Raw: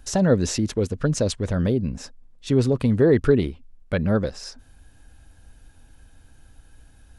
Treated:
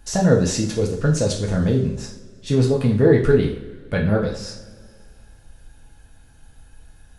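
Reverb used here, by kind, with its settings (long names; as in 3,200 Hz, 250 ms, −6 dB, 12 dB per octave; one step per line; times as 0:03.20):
coupled-rooms reverb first 0.46 s, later 2.3 s, from −20 dB, DRR −1.5 dB
level −1 dB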